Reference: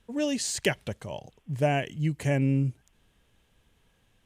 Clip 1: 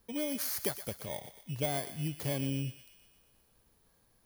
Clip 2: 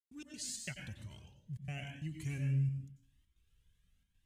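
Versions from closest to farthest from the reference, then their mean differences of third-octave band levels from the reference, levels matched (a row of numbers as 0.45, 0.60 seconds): 2, 1; 7.0, 9.5 decibels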